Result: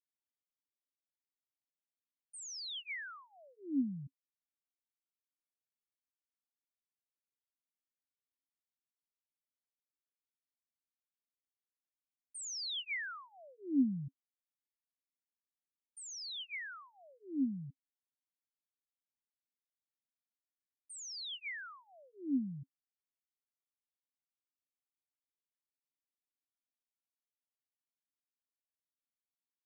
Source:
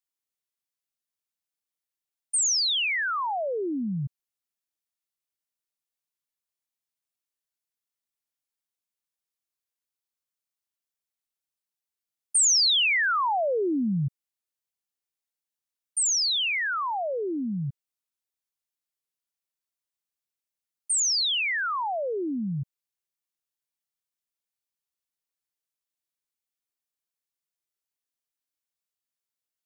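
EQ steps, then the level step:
formant filter i
phaser with its sweep stopped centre 1,100 Hz, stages 4
+5.0 dB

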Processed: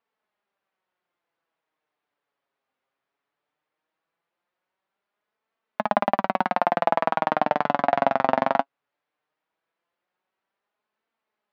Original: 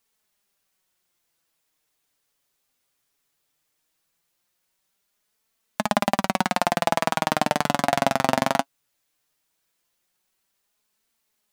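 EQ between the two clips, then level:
resonant band-pass 800 Hz, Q 0.59
high-frequency loss of the air 210 metres
+2.5 dB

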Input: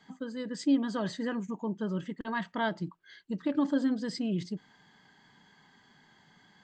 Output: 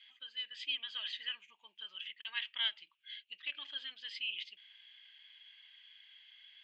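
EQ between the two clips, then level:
flat-topped band-pass 2,800 Hz, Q 3.1
+14.0 dB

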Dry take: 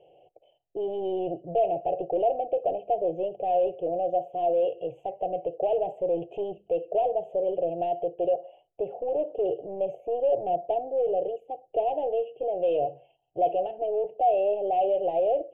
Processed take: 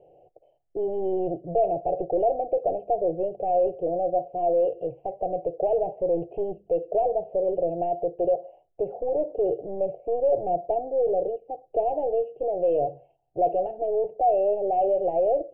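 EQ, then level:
low-pass filter 2,300 Hz 24 dB per octave
spectral tilt −3.5 dB per octave
low-shelf EQ 230 Hz −7 dB
0.0 dB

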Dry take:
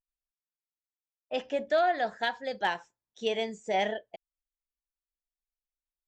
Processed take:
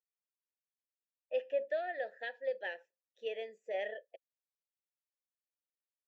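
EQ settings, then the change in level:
formant filter e
high-pass filter 270 Hz 12 dB per octave
+1.0 dB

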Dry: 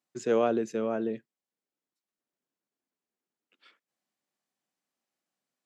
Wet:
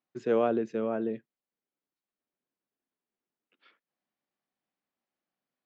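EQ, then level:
high-frequency loss of the air 210 metres
0.0 dB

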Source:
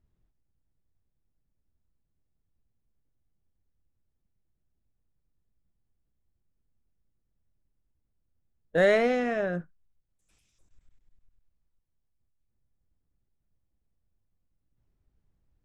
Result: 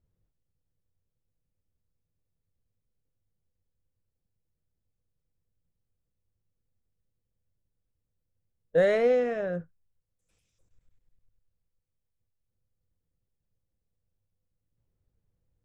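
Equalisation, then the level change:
thirty-one-band graphic EQ 100 Hz +9 dB, 160 Hz +5 dB, 500 Hz +11 dB
−5.5 dB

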